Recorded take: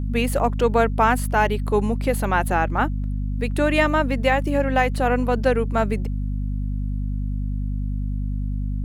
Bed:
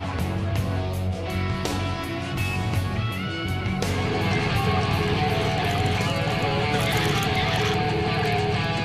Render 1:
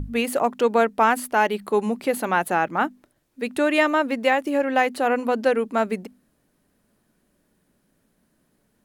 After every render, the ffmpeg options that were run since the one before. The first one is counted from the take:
ffmpeg -i in.wav -af "bandreject=frequency=50:width_type=h:width=6,bandreject=frequency=100:width_type=h:width=6,bandreject=frequency=150:width_type=h:width=6,bandreject=frequency=200:width_type=h:width=6,bandreject=frequency=250:width_type=h:width=6" out.wav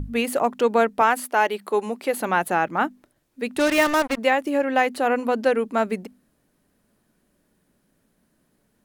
ffmpeg -i in.wav -filter_complex "[0:a]asettb=1/sr,asplit=3[link_01][link_02][link_03];[link_01]atrim=end=1.014[link_04];[link_02]atrim=start=1.01:end=2.21,asetpts=PTS-STARTPTS,afade=type=in:duration=0.004:curve=qsin,afade=type=out:start_time=1.196:duration=0.004:curve=qsin,highpass=310[link_05];[link_03]atrim=start=2.206[link_06];[link_04][link_05]acrossfade=duration=0.004:curve1=hsin:curve2=qsin[link_07];[link_07][link_06]acrossfade=duration=0.004:curve1=qsin:curve2=hsin,asplit=3[link_08][link_09][link_10];[link_08]afade=type=out:start_time=3.58:duration=0.02[link_11];[link_09]acrusher=bits=3:mix=0:aa=0.5,afade=type=in:start_time=3.58:duration=0.02,afade=type=out:start_time=4.17:duration=0.02[link_12];[link_10]afade=type=in:start_time=4.17:duration=0.02[link_13];[link_11][link_12][link_13]amix=inputs=3:normalize=0" out.wav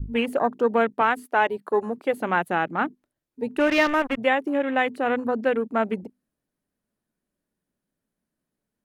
ffmpeg -i in.wav -af "afwtdn=0.0251,adynamicequalizer=threshold=0.0282:dfrequency=730:dqfactor=0.91:tfrequency=730:tqfactor=0.91:attack=5:release=100:ratio=0.375:range=2.5:mode=cutabove:tftype=bell" out.wav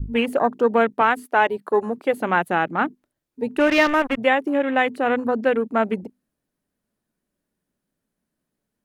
ffmpeg -i in.wav -af "volume=3dB" out.wav

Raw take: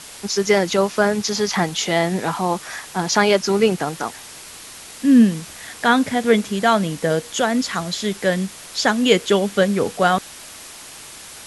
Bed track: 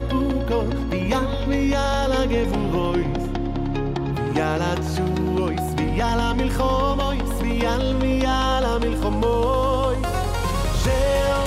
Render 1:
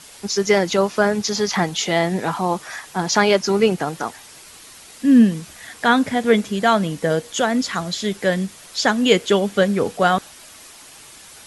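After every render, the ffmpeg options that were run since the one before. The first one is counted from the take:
ffmpeg -i in.wav -af "afftdn=noise_reduction=6:noise_floor=-39" out.wav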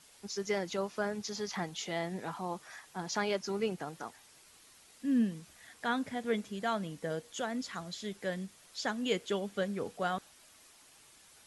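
ffmpeg -i in.wav -af "volume=-17dB" out.wav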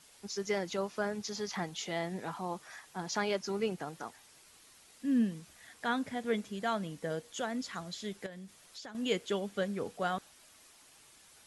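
ffmpeg -i in.wav -filter_complex "[0:a]asettb=1/sr,asplit=3[link_01][link_02][link_03];[link_01]atrim=end=8.264[link_04];[link_02]atrim=start=8.26:end=8.95,asetpts=PTS-STARTPTS,afade=type=in:duration=0.004:curve=qsin,afade=type=out:start_time=0.686:duration=0.004:curve=qsin,acompressor=threshold=-44dB:ratio=5:attack=3.2:release=140:knee=1:detection=peak[link_05];[link_03]atrim=start=8.946[link_06];[link_04][link_05]acrossfade=duration=0.004:curve1=hsin:curve2=qsin[link_07];[link_07][link_06]acrossfade=duration=0.004:curve1=qsin:curve2=hsin" out.wav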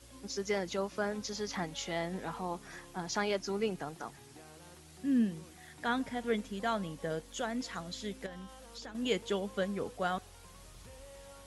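ffmpeg -i in.wav -i bed.wav -filter_complex "[1:a]volume=-33dB[link_01];[0:a][link_01]amix=inputs=2:normalize=0" out.wav

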